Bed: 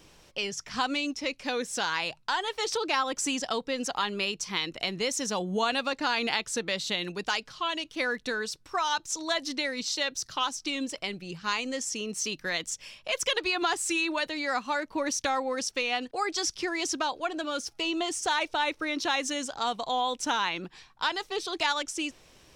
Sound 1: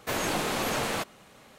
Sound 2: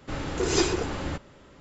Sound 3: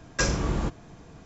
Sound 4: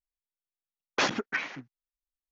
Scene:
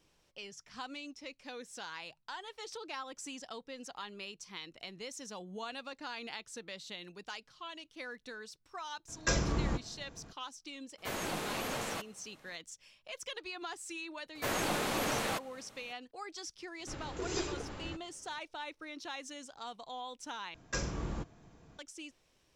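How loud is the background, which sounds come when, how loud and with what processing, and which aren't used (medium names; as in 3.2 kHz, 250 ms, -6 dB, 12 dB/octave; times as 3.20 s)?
bed -15 dB
9.08 s: add 3 -5.5 dB
10.98 s: add 1 -8.5 dB
14.35 s: add 1 -4.5 dB
16.79 s: add 2 -12.5 dB
20.54 s: replace with 3 -11 dB
not used: 4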